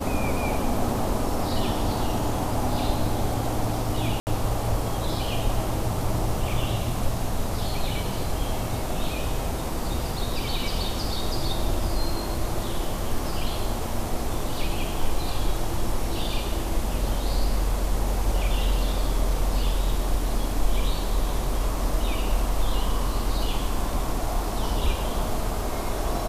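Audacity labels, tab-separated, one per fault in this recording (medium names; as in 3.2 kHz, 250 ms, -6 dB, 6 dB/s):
4.200000	4.270000	dropout 69 ms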